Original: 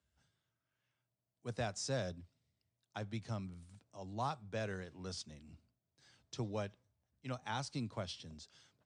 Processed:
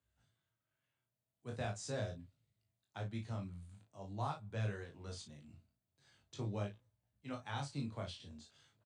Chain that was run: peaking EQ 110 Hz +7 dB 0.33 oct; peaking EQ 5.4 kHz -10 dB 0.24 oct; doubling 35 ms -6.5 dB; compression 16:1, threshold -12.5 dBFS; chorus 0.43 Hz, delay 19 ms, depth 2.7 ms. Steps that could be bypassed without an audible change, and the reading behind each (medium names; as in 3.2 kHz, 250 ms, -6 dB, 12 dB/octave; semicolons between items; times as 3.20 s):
compression, threshold -12.5 dBFS: peak at its input -24.0 dBFS